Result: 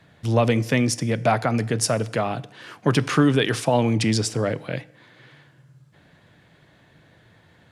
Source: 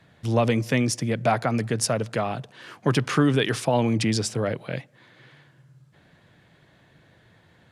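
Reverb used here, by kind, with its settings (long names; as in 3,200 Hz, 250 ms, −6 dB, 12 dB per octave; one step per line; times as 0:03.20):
feedback delay network reverb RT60 0.77 s, low-frequency decay 1×, high-frequency decay 0.9×, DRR 17 dB
level +2 dB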